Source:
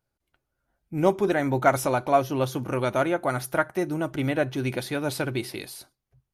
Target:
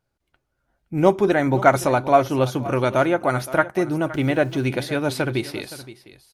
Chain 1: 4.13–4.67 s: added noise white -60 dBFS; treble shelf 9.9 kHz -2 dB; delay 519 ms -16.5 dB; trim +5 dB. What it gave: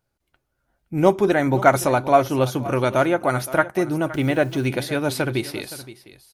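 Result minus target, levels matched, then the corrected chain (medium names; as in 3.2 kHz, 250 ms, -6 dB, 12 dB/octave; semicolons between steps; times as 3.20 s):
8 kHz band +3.0 dB
4.13–4.67 s: added noise white -60 dBFS; treble shelf 9.9 kHz -10 dB; delay 519 ms -16.5 dB; trim +5 dB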